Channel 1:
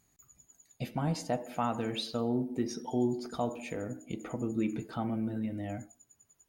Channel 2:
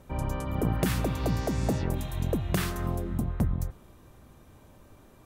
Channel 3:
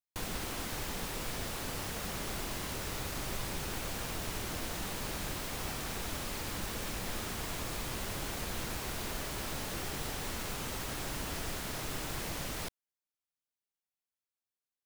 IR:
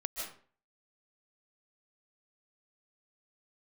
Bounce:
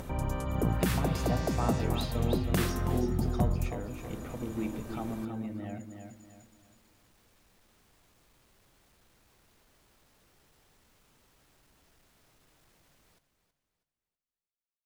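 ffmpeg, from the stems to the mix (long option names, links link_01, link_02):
-filter_complex "[0:a]volume=-3.5dB,asplit=3[link_01][link_02][link_03];[link_02]volume=-6.5dB[link_04];[1:a]acompressor=mode=upward:threshold=-30dB:ratio=2.5,volume=-1.5dB,asplit=2[link_05][link_06];[link_06]volume=-15dB[link_07];[2:a]asoftclip=type=tanh:threshold=-36dB,alimiter=level_in=23dB:limit=-24dB:level=0:latency=1,volume=-23dB,adelay=500,volume=-14dB,asplit=2[link_08][link_09];[link_09]volume=-11dB[link_10];[link_03]apad=whole_len=677093[link_11];[link_08][link_11]sidechaincompress=threshold=-42dB:ratio=8:attack=16:release=647[link_12];[link_04][link_07][link_10]amix=inputs=3:normalize=0,aecho=0:1:323|646|969|1292|1615:1|0.36|0.13|0.0467|0.0168[link_13];[link_01][link_05][link_12][link_13]amix=inputs=4:normalize=0"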